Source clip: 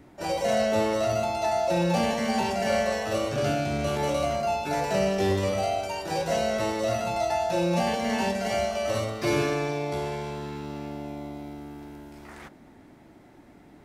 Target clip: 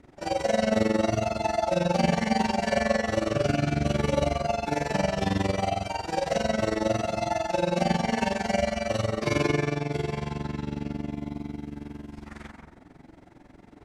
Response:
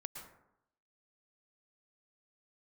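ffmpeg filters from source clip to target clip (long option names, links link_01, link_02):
-filter_complex "[0:a]lowpass=8500,asplit=2[link_01][link_02];[1:a]atrim=start_sample=2205,lowshelf=frequency=110:gain=6.5,adelay=27[link_03];[link_02][link_03]afir=irnorm=-1:irlink=0,volume=4.5dB[link_04];[link_01][link_04]amix=inputs=2:normalize=0,tremolo=f=22:d=0.857"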